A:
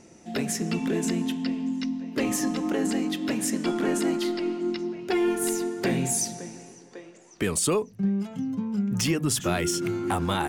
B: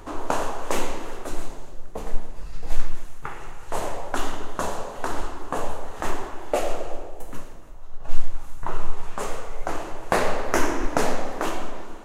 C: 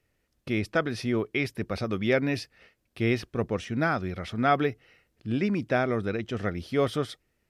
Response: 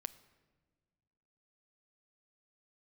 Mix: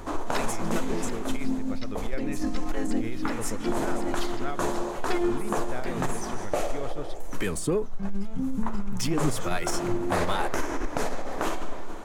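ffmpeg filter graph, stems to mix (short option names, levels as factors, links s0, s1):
-filter_complex "[0:a]acrossover=split=600[s0][s1];[s0]aeval=exprs='val(0)*(1-0.7/2+0.7/2*cos(2*PI*1.3*n/s))':c=same[s2];[s1]aeval=exprs='val(0)*(1-0.7/2-0.7/2*cos(2*PI*1.3*n/s))':c=same[s3];[s2][s3]amix=inputs=2:normalize=0,adynamicequalizer=threshold=0.00447:dfrequency=1700:dqfactor=0.7:tfrequency=1700:tqfactor=0.7:attack=5:release=100:ratio=0.375:range=2:mode=cutabove:tftype=highshelf,volume=1.26[s4];[1:a]acompressor=threshold=0.1:ratio=6,volume=0.944,asplit=2[s5][s6];[s6]volume=0.668[s7];[2:a]volume=0.473,asplit=2[s8][s9];[s9]apad=whole_len=462317[s10];[s4][s10]sidechaincompress=threshold=0.0178:ratio=8:attack=16:release=151[s11];[s5][s8]amix=inputs=2:normalize=0,acompressor=threshold=0.0447:ratio=2,volume=1[s12];[3:a]atrim=start_sample=2205[s13];[s7][s13]afir=irnorm=-1:irlink=0[s14];[s11][s12][s14]amix=inputs=3:normalize=0,bandreject=f=2800:w=16,aeval=exprs='(tanh(5.62*val(0)+0.25)-tanh(0.25))/5.62':c=same"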